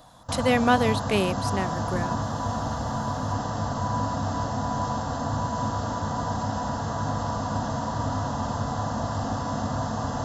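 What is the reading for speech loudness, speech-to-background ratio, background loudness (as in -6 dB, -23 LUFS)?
-25.5 LUFS, 3.5 dB, -29.0 LUFS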